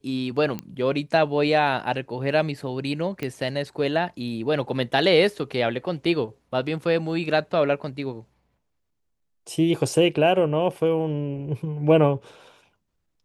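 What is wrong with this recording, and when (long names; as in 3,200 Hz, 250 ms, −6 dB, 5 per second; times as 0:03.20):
0:00.59: click −17 dBFS
0:03.23: click −16 dBFS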